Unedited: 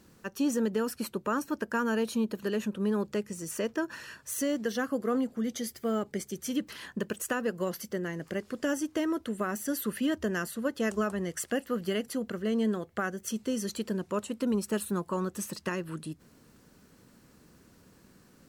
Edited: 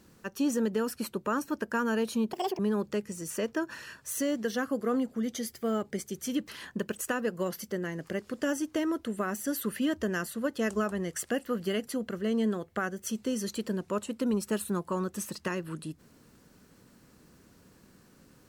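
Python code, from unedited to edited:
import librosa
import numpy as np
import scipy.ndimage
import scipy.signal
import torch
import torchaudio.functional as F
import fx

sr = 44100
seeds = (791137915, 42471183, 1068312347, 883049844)

y = fx.edit(x, sr, fx.speed_span(start_s=2.33, length_s=0.47, speed=1.8), tone=tone)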